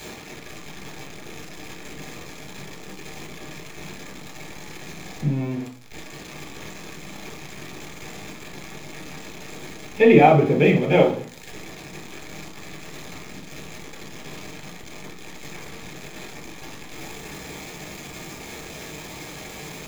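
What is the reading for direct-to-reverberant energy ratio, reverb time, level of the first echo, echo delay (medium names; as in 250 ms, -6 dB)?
1.0 dB, 0.45 s, no echo, no echo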